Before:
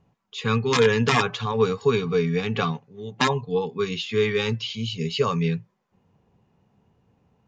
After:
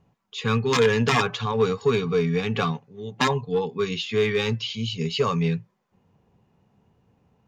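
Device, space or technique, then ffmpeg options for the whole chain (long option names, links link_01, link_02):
parallel distortion: -filter_complex "[0:a]asplit=2[link_01][link_02];[link_02]asoftclip=type=hard:threshold=-19.5dB,volume=-6dB[link_03];[link_01][link_03]amix=inputs=2:normalize=0,volume=-3dB"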